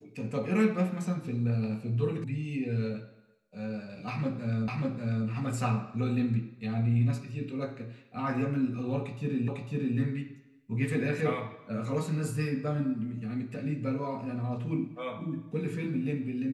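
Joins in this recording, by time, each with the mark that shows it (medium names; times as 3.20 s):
2.24 s: sound stops dead
4.68 s: repeat of the last 0.59 s
9.48 s: repeat of the last 0.5 s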